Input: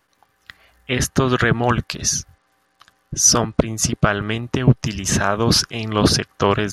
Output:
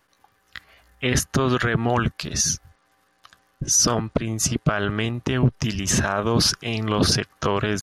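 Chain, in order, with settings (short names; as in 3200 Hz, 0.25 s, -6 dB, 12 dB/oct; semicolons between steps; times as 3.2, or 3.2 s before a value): limiter -9.5 dBFS, peak gain reduction 7 dB; tempo 0.86×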